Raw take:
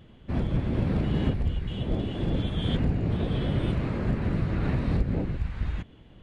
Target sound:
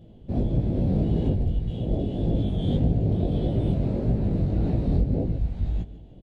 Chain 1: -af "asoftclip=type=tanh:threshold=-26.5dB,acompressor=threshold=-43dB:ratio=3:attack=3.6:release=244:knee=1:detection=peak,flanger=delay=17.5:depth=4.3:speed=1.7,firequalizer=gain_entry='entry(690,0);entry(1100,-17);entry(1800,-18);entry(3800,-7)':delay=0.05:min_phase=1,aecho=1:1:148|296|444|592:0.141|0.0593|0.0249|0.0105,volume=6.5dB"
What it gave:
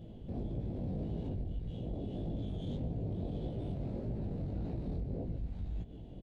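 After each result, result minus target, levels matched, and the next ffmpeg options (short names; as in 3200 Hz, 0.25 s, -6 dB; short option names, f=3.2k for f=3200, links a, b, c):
compressor: peak gain reduction +11 dB; soft clip: distortion +14 dB
-af "asoftclip=type=tanh:threshold=-26.5dB,flanger=delay=17.5:depth=4.3:speed=1.7,firequalizer=gain_entry='entry(690,0);entry(1100,-17);entry(1800,-18);entry(3800,-7)':delay=0.05:min_phase=1,aecho=1:1:148|296|444|592:0.141|0.0593|0.0249|0.0105,volume=6.5dB"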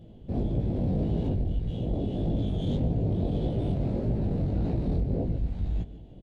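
soft clip: distortion +14 dB
-af "asoftclip=type=tanh:threshold=-15dB,flanger=delay=17.5:depth=4.3:speed=1.7,firequalizer=gain_entry='entry(690,0);entry(1100,-17);entry(1800,-18);entry(3800,-7)':delay=0.05:min_phase=1,aecho=1:1:148|296|444|592:0.141|0.0593|0.0249|0.0105,volume=6.5dB"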